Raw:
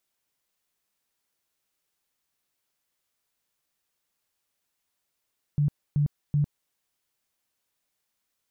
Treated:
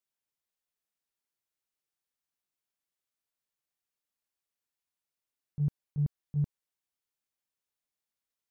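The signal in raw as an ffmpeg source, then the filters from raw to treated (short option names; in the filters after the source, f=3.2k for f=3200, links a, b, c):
-f lavfi -i "aevalsrc='0.106*sin(2*PI*146*mod(t,0.38))*lt(mod(t,0.38),15/146)':d=1.14:s=44100"
-af "agate=range=-12dB:threshold=-23dB:ratio=16:detection=peak"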